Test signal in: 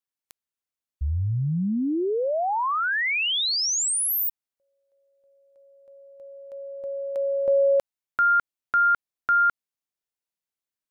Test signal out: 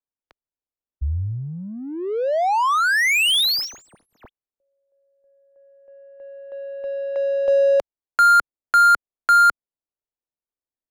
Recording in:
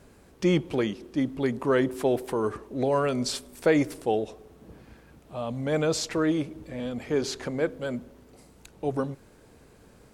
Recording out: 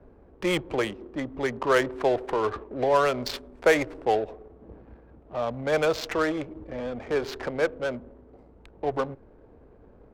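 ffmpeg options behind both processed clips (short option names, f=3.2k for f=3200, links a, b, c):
-filter_complex "[0:a]equalizer=f=150:w=0.82:g=-9.5,acrossover=split=150|420|4600[a][b][c][d];[b]acompressor=threshold=-47dB:ratio=5:release=114:detection=rms[e];[d]asoftclip=type=tanh:threshold=-34.5dB[f];[a][e][c][f]amix=inputs=4:normalize=0,adynamicsmooth=sensitivity=6.5:basefreq=670,volume=6.5dB"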